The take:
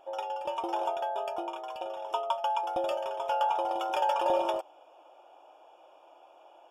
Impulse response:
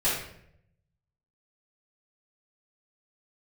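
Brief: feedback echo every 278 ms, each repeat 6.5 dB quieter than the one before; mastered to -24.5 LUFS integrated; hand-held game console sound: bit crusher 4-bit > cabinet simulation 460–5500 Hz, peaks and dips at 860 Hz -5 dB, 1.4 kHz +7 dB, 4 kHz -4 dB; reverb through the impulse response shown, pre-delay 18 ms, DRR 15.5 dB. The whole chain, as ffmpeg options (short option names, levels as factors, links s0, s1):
-filter_complex "[0:a]aecho=1:1:278|556|834|1112|1390|1668:0.473|0.222|0.105|0.0491|0.0231|0.0109,asplit=2[s0][s1];[1:a]atrim=start_sample=2205,adelay=18[s2];[s1][s2]afir=irnorm=-1:irlink=0,volume=0.0447[s3];[s0][s3]amix=inputs=2:normalize=0,acrusher=bits=3:mix=0:aa=0.000001,highpass=460,equalizer=f=860:t=q:w=4:g=-5,equalizer=f=1400:t=q:w=4:g=7,equalizer=f=4000:t=q:w=4:g=-4,lowpass=f=5500:w=0.5412,lowpass=f=5500:w=1.3066,volume=2"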